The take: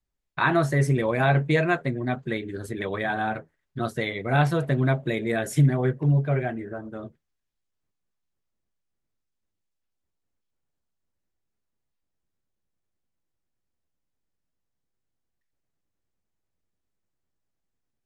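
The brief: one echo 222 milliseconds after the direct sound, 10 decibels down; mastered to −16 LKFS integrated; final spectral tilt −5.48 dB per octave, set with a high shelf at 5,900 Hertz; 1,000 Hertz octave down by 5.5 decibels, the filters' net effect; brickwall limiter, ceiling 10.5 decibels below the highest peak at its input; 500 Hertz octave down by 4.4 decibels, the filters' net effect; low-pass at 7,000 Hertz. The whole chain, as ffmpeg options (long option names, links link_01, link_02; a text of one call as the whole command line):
ffmpeg -i in.wav -af "lowpass=7000,equalizer=frequency=500:width_type=o:gain=-4,equalizer=frequency=1000:width_type=o:gain=-6,highshelf=frequency=5900:gain=-8.5,alimiter=limit=-21.5dB:level=0:latency=1,aecho=1:1:222:0.316,volume=15.5dB" out.wav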